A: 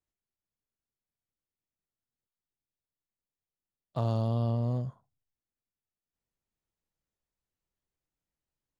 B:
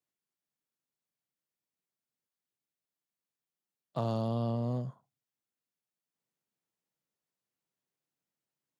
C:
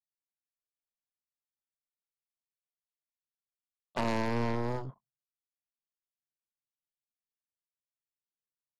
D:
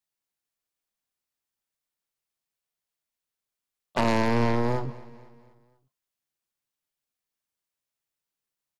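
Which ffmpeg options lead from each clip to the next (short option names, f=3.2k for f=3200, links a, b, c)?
-af "highpass=f=130:w=0.5412,highpass=f=130:w=1.3066"
-af "aeval=exprs='0.1*(cos(1*acos(clip(val(0)/0.1,-1,1)))-cos(1*PI/2))+0.0158*(cos(6*acos(clip(val(0)/0.1,-1,1)))-cos(6*PI/2))+0.0316*(cos(7*acos(clip(val(0)/0.1,-1,1)))-cos(7*PI/2))':c=same,anlmdn=0.000158"
-af "aecho=1:1:244|488|732|976:0.106|0.0508|0.0244|0.0117,volume=7.5dB"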